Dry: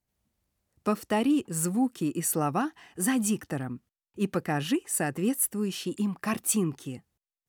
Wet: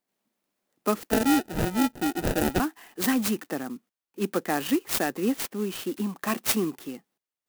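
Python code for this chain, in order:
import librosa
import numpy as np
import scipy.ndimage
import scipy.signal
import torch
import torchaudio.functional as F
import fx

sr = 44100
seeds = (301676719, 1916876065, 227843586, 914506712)

y = fx.median_filter(x, sr, points=5, at=(5.28, 5.91))
y = scipy.signal.sosfilt(scipy.signal.butter(4, 220.0, 'highpass', fs=sr, output='sos'), y)
y = fx.sample_hold(y, sr, seeds[0], rate_hz=1100.0, jitter_pct=0, at=(1.11, 2.6))
y = fx.clock_jitter(y, sr, seeds[1], jitter_ms=0.048)
y = F.gain(torch.from_numpy(y), 3.0).numpy()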